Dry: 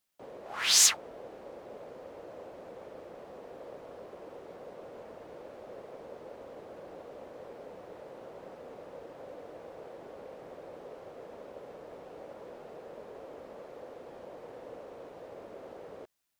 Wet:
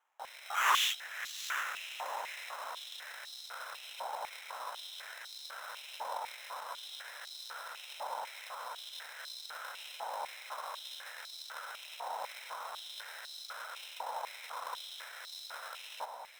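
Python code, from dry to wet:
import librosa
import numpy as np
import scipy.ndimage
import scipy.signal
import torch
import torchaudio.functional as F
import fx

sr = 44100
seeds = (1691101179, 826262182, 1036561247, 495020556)

y = fx.lower_of_two(x, sr, delay_ms=1.4)
y = scipy.signal.sosfilt(scipy.signal.bessel(2, 11000.0, 'lowpass', norm='mag', fs=sr, output='sos'), y)
y = fx.tube_stage(y, sr, drive_db=32.0, bias=0.4)
y = fx.rider(y, sr, range_db=4, speed_s=2.0)
y = fx.echo_diffused(y, sr, ms=715, feedback_pct=41, wet_db=-8.0)
y = fx.sample_hold(y, sr, seeds[0], rate_hz=4600.0, jitter_pct=0)
y = y + 10.0 ** (-22.0 / 20.0) * np.pad(y, (int(368 * sr / 1000.0), 0))[:len(y)]
y = fx.filter_held_highpass(y, sr, hz=4.0, low_hz=890.0, high_hz=4200.0)
y = y * librosa.db_to_amplitude(3.0)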